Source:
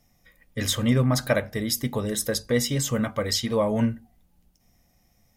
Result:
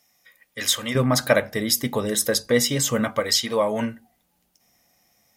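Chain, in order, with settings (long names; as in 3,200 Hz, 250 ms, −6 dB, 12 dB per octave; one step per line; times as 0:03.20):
high-pass filter 1,300 Hz 6 dB per octave, from 0:00.95 260 Hz, from 0:03.20 600 Hz
level +5.5 dB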